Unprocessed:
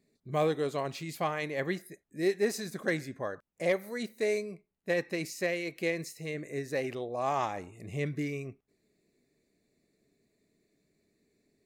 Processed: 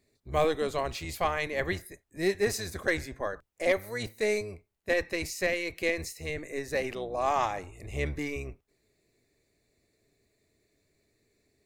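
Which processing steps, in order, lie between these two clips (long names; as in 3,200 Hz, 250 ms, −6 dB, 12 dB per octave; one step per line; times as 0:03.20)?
sub-octave generator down 1 octave, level −1 dB
parametric band 180 Hz −10.5 dB 1.8 octaves
level +4.5 dB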